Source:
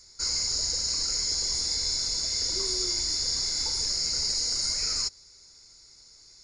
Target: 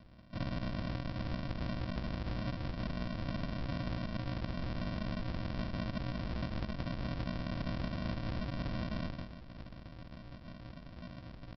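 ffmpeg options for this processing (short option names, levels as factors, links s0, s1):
-filter_complex "[0:a]highpass=470,lowpass=2500,aderivative,bandreject=f=1900:w=21,areverse,acompressor=mode=upward:threshold=0.00316:ratio=2.5,areverse,atempo=0.58,asplit=2[s0][s1];[s1]adelay=16,volume=0.473[s2];[s0][s2]amix=inputs=2:normalize=0,asetrate=42336,aresample=44100,afreqshift=-21,aecho=1:1:158:0.376,aresample=11025,acrusher=samples=26:mix=1:aa=0.000001,aresample=44100,acompressor=threshold=0.00501:ratio=6,volume=4.22"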